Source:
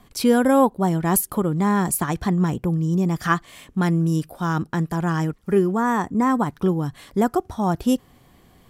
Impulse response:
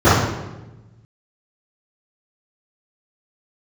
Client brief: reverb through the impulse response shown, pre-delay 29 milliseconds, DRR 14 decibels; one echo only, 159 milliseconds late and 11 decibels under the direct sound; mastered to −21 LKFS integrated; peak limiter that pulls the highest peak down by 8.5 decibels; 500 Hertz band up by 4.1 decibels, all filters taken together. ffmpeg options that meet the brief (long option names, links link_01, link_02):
-filter_complex "[0:a]equalizer=frequency=500:width_type=o:gain=5,alimiter=limit=-11dB:level=0:latency=1,aecho=1:1:159:0.282,asplit=2[link_01][link_02];[1:a]atrim=start_sample=2205,adelay=29[link_03];[link_02][link_03]afir=irnorm=-1:irlink=0,volume=-43.5dB[link_04];[link_01][link_04]amix=inputs=2:normalize=0,volume=0.5dB"